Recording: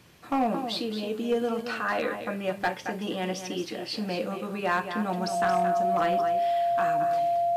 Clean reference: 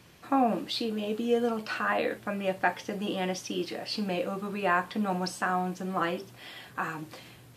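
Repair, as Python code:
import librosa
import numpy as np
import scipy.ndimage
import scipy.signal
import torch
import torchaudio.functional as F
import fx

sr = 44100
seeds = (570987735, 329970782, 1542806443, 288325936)

y = fx.fix_declip(x, sr, threshold_db=-18.5)
y = fx.notch(y, sr, hz=690.0, q=30.0)
y = fx.fix_echo_inverse(y, sr, delay_ms=222, level_db=-9.0)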